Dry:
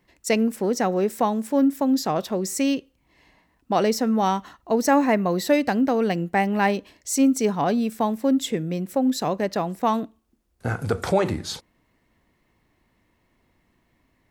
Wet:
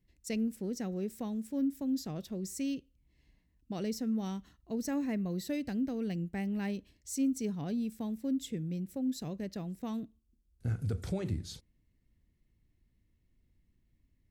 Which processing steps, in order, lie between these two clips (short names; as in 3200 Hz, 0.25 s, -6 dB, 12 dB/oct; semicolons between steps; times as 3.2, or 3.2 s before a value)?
passive tone stack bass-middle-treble 10-0-1; gain +7 dB